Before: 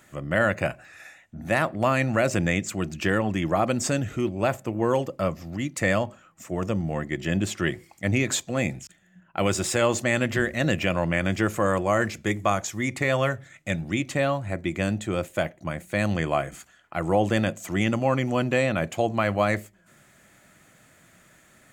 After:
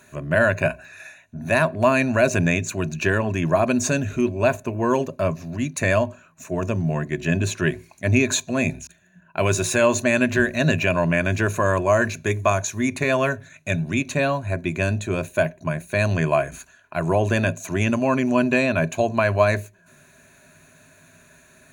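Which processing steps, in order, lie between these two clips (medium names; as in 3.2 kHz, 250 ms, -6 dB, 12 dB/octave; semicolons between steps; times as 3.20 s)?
rippled EQ curve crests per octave 1.5, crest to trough 12 dB; trim +2 dB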